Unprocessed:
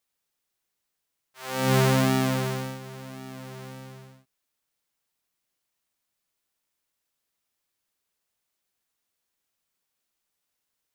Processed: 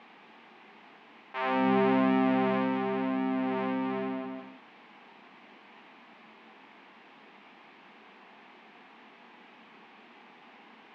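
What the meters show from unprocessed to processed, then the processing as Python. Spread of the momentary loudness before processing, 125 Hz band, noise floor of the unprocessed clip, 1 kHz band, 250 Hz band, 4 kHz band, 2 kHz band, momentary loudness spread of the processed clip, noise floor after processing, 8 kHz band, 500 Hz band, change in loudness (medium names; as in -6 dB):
20 LU, -12.5 dB, -82 dBFS, +2.0 dB, +2.0 dB, -9.0 dB, -2.0 dB, 12 LU, -55 dBFS, under -30 dB, 0.0 dB, -4.0 dB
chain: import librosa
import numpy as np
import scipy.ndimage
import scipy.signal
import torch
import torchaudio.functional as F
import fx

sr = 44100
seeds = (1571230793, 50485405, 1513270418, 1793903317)

p1 = fx.chorus_voices(x, sr, voices=6, hz=0.36, base_ms=26, depth_ms=1.5, mix_pct=25)
p2 = fx.cabinet(p1, sr, low_hz=210.0, low_slope=24, high_hz=2400.0, hz=(220.0, 560.0, 820.0, 1400.0, 1900.0), db=(8, -9, 4, -7, -3))
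p3 = p2 + fx.echo_feedback(p2, sr, ms=173, feedback_pct=18, wet_db=-15.5, dry=0)
y = fx.env_flatten(p3, sr, amount_pct=70)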